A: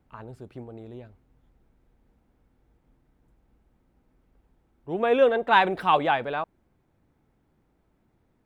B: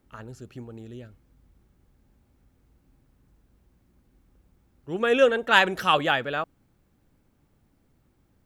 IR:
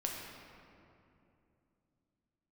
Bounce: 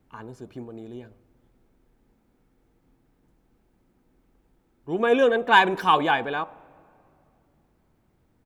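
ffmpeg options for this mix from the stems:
-filter_complex "[0:a]bandreject=f=99.28:t=h:w=4,bandreject=f=198.56:t=h:w=4,bandreject=f=297.84:t=h:w=4,bandreject=f=397.12:t=h:w=4,bandreject=f=496.4:t=h:w=4,bandreject=f=595.68:t=h:w=4,bandreject=f=694.96:t=h:w=4,bandreject=f=794.24:t=h:w=4,bandreject=f=893.52:t=h:w=4,bandreject=f=992.8:t=h:w=4,bandreject=f=1.09208k:t=h:w=4,bandreject=f=1.19136k:t=h:w=4,bandreject=f=1.29064k:t=h:w=4,volume=0dB,asplit=2[a][b];[b]volume=-22dB[c];[1:a]volume=-1,adelay=1.2,volume=-5dB[d];[2:a]atrim=start_sample=2205[e];[c][e]afir=irnorm=-1:irlink=0[f];[a][d][f]amix=inputs=3:normalize=0"

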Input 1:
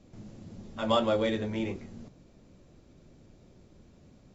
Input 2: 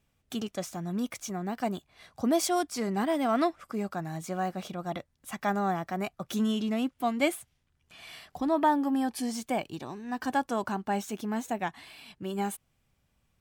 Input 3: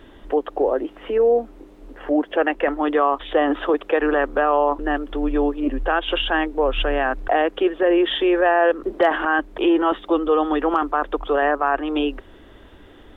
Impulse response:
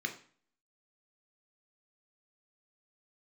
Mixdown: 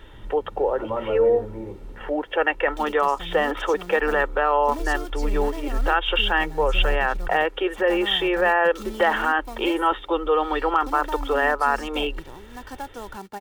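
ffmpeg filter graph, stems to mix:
-filter_complex "[0:a]lowpass=f=1.4k:w=0.5412,lowpass=f=1.4k:w=1.3066,volume=-1.5dB[a];[1:a]highshelf=f=10k:g=-11.5,acrossover=split=180[b][c];[c]acompressor=threshold=-29dB:ratio=3[d];[b][d]amix=inputs=2:normalize=0,acrusher=bits=3:mode=log:mix=0:aa=0.000001,adelay=2450,volume=-3.5dB[e];[2:a]equalizer=f=310:t=o:w=1.9:g=-9.5,volume=1.5dB[f];[a][e][f]amix=inputs=3:normalize=0,aecho=1:1:2.2:0.46"

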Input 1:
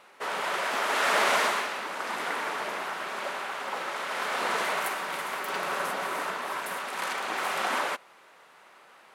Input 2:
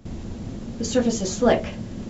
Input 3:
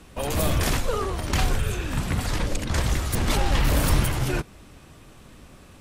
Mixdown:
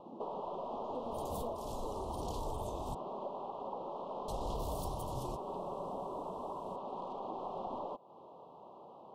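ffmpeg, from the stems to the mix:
-filter_complex "[0:a]lowshelf=f=200:g=9,aeval=exprs='0.251*(cos(1*acos(clip(val(0)/0.251,-1,1)))-cos(1*PI/2))+0.0282*(cos(4*acos(clip(val(0)/0.251,-1,1)))-cos(4*PI/2))+0.126*(cos(5*acos(clip(val(0)/0.251,-1,1)))-cos(5*PI/2))':c=same,volume=-5.5dB[a];[1:a]highpass=f=260:w=0.5412,highpass=f=260:w=1.3066,volume=-9dB,asplit=2[b][c];[2:a]alimiter=limit=-18dB:level=0:latency=1:release=402,adelay=950,volume=-14dB,asplit=3[d][e][f];[d]atrim=end=2.95,asetpts=PTS-STARTPTS,afade=t=out:st=2.946:d=0.004:c=hsin[g];[e]atrim=start=2.95:end=4.28,asetpts=PTS-STARTPTS,volume=0[h];[f]atrim=start=4.28,asetpts=PTS-STARTPTS,afade=t=in:d=0.004:c=hsin[i];[g][h][i]concat=n=3:v=0:a=1[j];[c]apad=whole_len=298051[k];[j][k]sidechaincompress=threshold=-36dB:ratio=8:attack=6.6:release=216[l];[a][b]amix=inputs=2:normalize=0,lowpass=1.2k,acompressor=threshold=-39dB:ratio=4,volume=0dB[m];[l][m]amix=inputs=2:normalize=0,asuperstop=centerf=1800:order=8:qfactor=0.86"

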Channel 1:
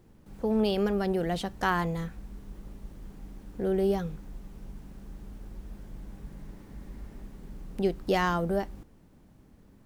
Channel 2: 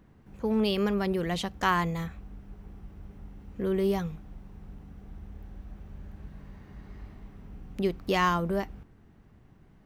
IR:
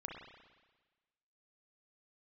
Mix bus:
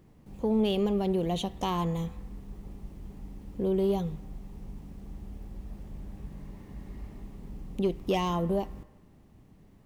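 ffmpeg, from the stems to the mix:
-filter_complex "[0:a]asoftclip=type=tanh:threshold=-19dB,volume=-3dB[a];[1:a]acompressor=threshold=-33dB:ratio=1.5,volume=-4.5dB,asplit=2[b][c];[c]volume=-9.5dB[d];[2:a]atrim=start_sample=2205[e];[d][e]afir=irnorm=-1:irlink=0[f];[a][b][f]amix=inputs=3:normalize=0,equalizer=f=1.5k:t=o:w=0.32:g=-7.5"

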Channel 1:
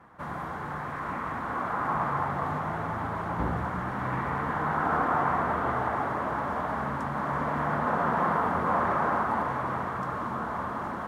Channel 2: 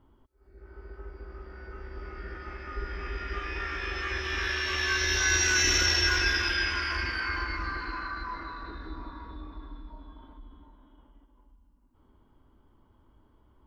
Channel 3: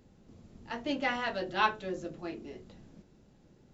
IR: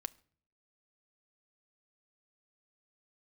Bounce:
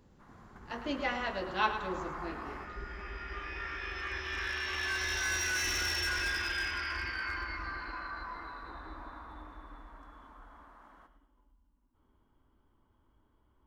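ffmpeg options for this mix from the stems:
-filter_complex "[0:a]highpass=f=920:p=1,volume=-11dB,asplit=2[a][b];[b]volume=-22.5dB[c];[1:a]equalizer=f=1.9k:t=o:w=1.9:g=4,asoftclip=type=hard:threshold=-20.5dB,volume=-8.5dB[d];[2:a]volume=-2.5dB,asplit=3[e][f][g];[f]volume=-10dB[h];[g]apad=whole_len=488618[i];[a][i]sidechaingate=range=-10dB:threshold=-52dB:ratio=16:detection=peak[j];[c][h]amix=inputs=2:normalize=0,aecho=0:1:108|216|324|432|540|648:1|0.41|0.168|0.0689|0.0283|0.0116[k];[j][d][e][k]amix=inputs=4:normalize=0"

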